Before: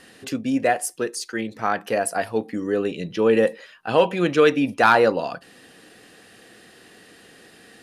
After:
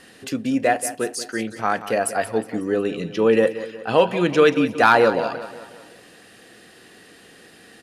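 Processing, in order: feedback delay 182 ms, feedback 48%, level -13.5 dB; trim +1 dB

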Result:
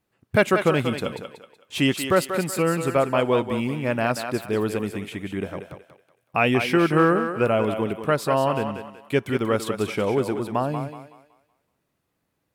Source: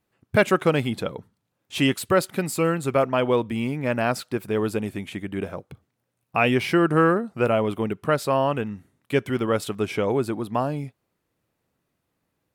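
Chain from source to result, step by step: on a send: thinning echo 187 ms, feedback 36%, high-pass 360 Hz, level -7 dB

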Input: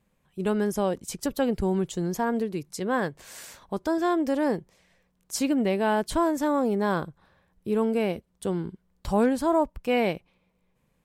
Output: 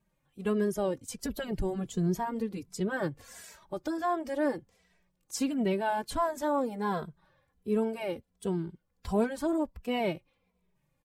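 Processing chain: coarse spectral quantiser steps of 15 dB; 1.20–3.41 s: bass shelf 260 Hz +8 dB; endless flanger 2.7 ms -1.4 Hz; trim -2 dB

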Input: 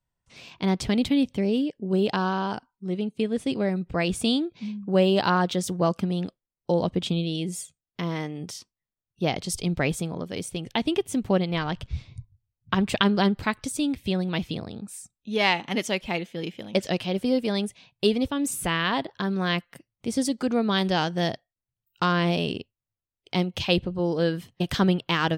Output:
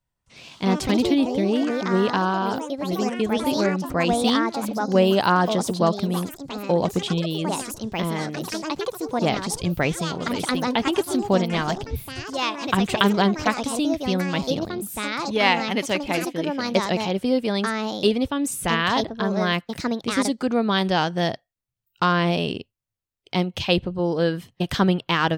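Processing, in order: ever faster or slower copies 163 ms, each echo +4 st, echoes 3, each echo -6 dB; dynamic bell 1 kHz, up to +3 dB, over -35 dBFS, Q 0.81; trim +1.5 dB

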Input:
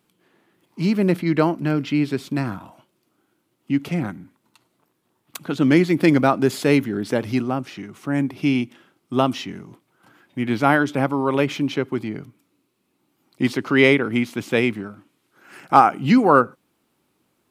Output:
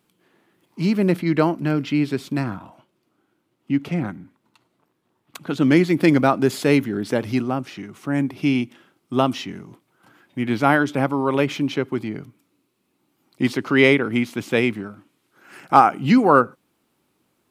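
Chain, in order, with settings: 2.44–5.47 s: treble shelf 5.5 kHz -9 dB

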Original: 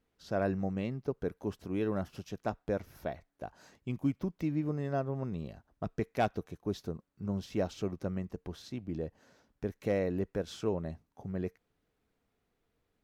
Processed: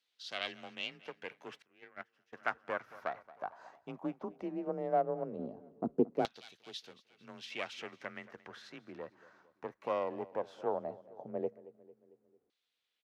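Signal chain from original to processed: self-modulated delay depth 0.16 ms; 4.26–4.67 s: de-hum 75.1 Hz, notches 9; frequency shift +27 Hz; 5.39–6.13 s: graphic EQ 250/500/1000/2000 Hz +10/-4/+7/-9 dB; feedback delay 225 ms, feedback 52%, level -19.5 dB; LFO band-pass saw down 0.16 Hz 380–3900 Hz; treble shelf 3.9 kHz +4 dB; gain riding within 3 dB 2 s; 1.62–2.33 s: gate -42 dBFS, range -23 dB; trim +6.5 dB

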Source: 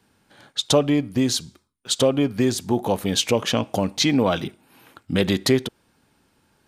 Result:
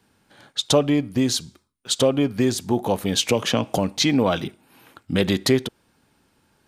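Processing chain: 3.29–3.78 s: three bands compressed up and down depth 70%

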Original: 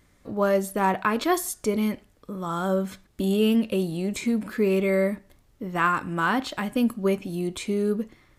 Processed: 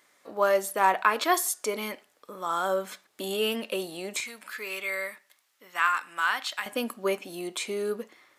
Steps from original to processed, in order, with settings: high-pass 590 Hz 12 dB/octave, from 4.20 s 1.4 kHz, from 6.66 s 540 Hz; trim +2.5 dB

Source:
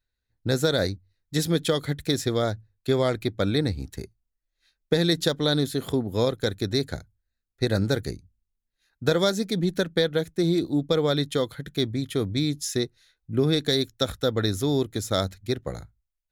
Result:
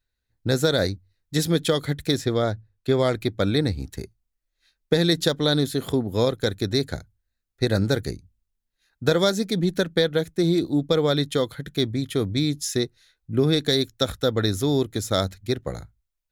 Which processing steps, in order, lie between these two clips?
2.17–2.99 s: treble shelf 4.6 kHz -7.5 dB; trim +2 dB

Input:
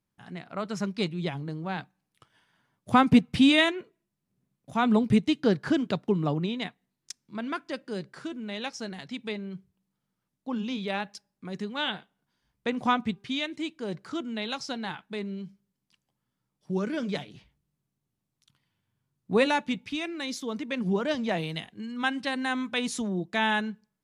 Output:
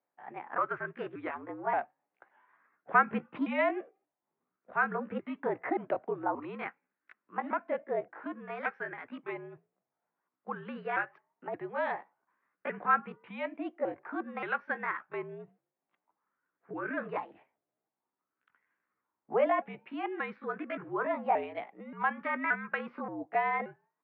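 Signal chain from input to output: sawtooth pitch modulation +5 st, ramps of 577 ms; in parallel at -3 dB: compressor with a negative ratio -32 dBFS, ratio -0.5; on the sum: mistuned SSB -65 Hz 360–2300 Hz; sweeping bell 0.51 Hz 660–1600 Hz +12 dB; trim -7 dB

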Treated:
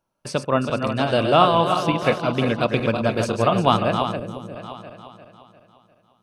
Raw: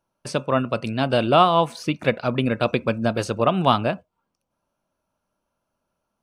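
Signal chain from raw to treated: backward echo that repeats 175 ms, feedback 69%, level -6 dB; time-frequency box 4.16–4.55 s, 600–5500 Hz -10 dB

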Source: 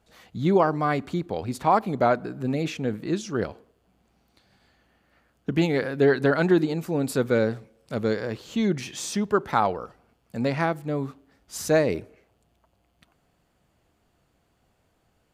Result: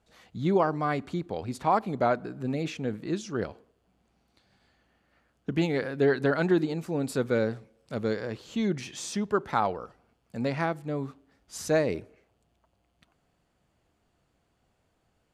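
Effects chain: low-pass 11 kHz 12 dB/octave; trim -4 dB

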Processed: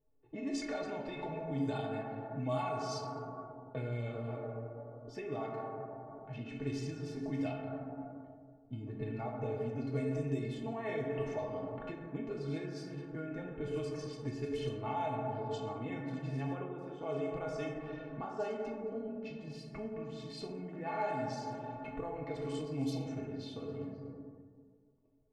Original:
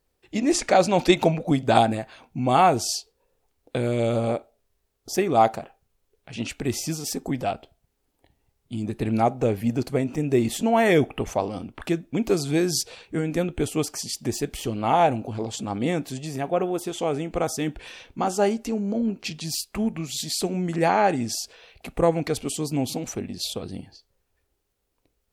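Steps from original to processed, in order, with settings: peak limiter -13 dBFS, peak gain reduction 9.5 dB; plate-style reverb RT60 2 s, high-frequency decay 0.4×, DRR -1 dB; compression 2.5:1, threshold -36 dBFS, peak gain reduction 15 dB; inharmonic resonator 130 Hz, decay 0.22 s, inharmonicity 0.03; level-controlled noise filter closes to 650 Hz, open at -33.5 dBFS; trim +5.5 dB

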